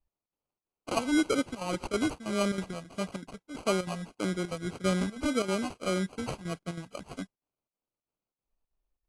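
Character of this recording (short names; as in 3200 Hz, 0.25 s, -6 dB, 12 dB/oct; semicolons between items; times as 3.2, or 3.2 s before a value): phasing stages 4, 1.7 Hz, lowest notch 340–3200 Hz; chopped level 3.1 Hz, depth 65%, duty 80%; aliases and images of a low sample rate 1800 Hz, jitter 0%; AAC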